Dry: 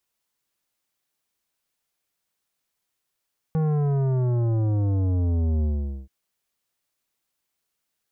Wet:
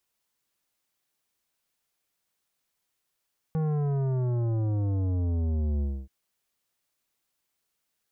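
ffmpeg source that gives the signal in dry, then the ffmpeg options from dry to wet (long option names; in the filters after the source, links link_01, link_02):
-f lavfi -i "aevalsrc='0.0891*clip((2.53-t)/0.45,0,1)*tanh(3.98*sin(2*PI*160*2.53/log(65/160)*(exp(log(65/160)*t/2.53)-1)))/tanh(3.98)':duration=2.53:sample_rate=44100"
-af "alimiter=level_in=1.5dB:limit=-24dB:level=0:latency=1,volume=-1.5dB"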